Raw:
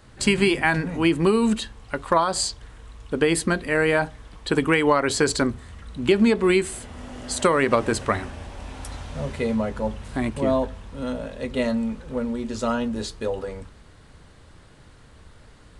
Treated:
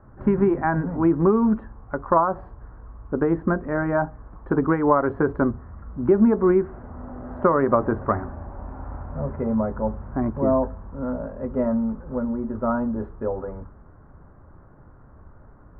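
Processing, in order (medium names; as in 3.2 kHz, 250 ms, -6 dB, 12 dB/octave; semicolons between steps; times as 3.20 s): steep low-pass 1.4 kHz 36 dB/octave; band-stop 470 Hz, Q 12; trim +1.5 dB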